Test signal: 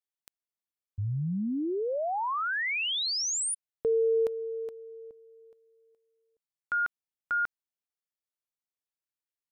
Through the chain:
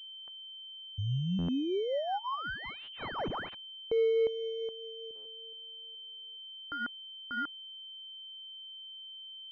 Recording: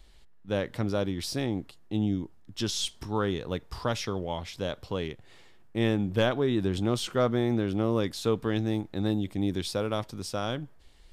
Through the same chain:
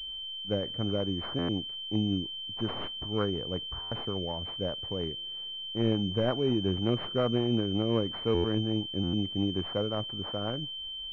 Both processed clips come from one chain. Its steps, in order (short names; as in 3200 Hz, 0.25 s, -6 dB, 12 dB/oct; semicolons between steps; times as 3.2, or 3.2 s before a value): rotary speaker horn 5.5 Hz; stuck buffer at 1.38/3.81/5.15/8.34/9.03, samples 512; pulse-width modulation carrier 3100 Hz